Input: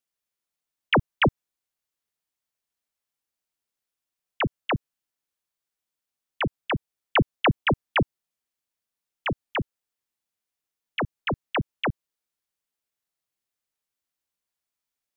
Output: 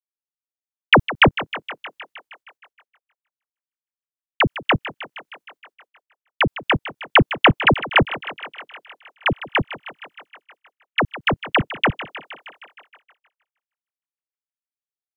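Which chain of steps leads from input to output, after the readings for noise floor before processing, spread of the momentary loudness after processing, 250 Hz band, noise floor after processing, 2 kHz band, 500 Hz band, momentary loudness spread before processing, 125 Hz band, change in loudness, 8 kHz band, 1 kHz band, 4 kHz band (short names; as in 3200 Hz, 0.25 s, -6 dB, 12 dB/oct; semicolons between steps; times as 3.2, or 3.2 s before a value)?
under -85 dBFS, 20 LU, +5.5 dB, under -85 dBFS, +10.0 dB, +6.5 dB, 9 LU, +5.0 dB, +8.0 dB, n/a, +8.5 dB, +10.0 dB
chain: transient shaper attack +7 dB, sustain +2 dB; thinning echo 0.156 s, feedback 73%, high-pass 310 Hz, level -14 dB; expander -49 dBFS; gain +3 dB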